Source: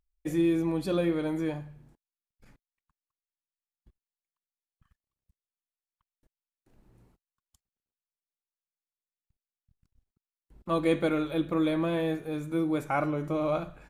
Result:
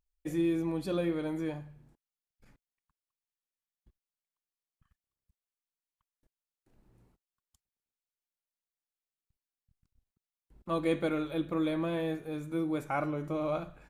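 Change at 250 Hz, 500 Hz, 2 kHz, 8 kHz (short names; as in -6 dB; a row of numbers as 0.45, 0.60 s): -4.0 dB, -4.0 dB, -4.0 dB, n/a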